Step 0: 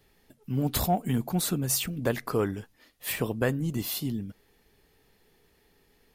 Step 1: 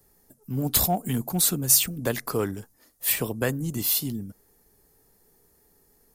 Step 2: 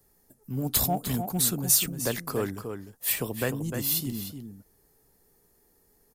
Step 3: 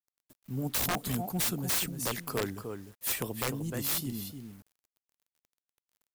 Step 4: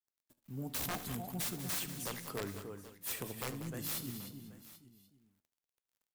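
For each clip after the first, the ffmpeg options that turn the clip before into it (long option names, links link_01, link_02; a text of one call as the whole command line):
ffmpeg -i in.wav -filter_complex "[0:a]highshelf=frequency=3500:gain=11,acrossover=split=240|1600|5400[link_01][link_02][link_03][link_04];[link_03]aeval=exprs='sgn(val(0))*max(abs(val(0))-0.00237,0)':channel_layout=same[link_05];[link_01][link_02][link_05][link_04]amix=inputs=4:normalize=0" out.wav
ffmpeg -i in.wav -filter_complex "[0:a]asplit=2[link_01][link_02];[link_02]adelay=303.2,volume=-7dB,highshelf=frequency=4000:gain=-6.82[link_03];[link_01][link_03]amix=inputs=2:normalize=0,volume=-3dB" out.wav
ffmpeg -i in.wav -af "acrusher=bits=8:mix=0:aa=0.000001,aeval=exprs='(mod(9.44*val(0)+1,2)-1)/9.44':channel_layout=same,volume=-3.5dB" out.wav
ffmpeg -i in.wav -filter_complex "[0:a]flanger=delay=9.8:depth=9.2:regen=82:speed=0.4:shape=triangular,asplit=2[link_01][link_02];[link_02]aecho=0:1:73|192|781:0.168|0.251|0.133[link_03];[link_01][link_03]amix=inputs=2:normalize=0,volume=-3.5dB" out.wav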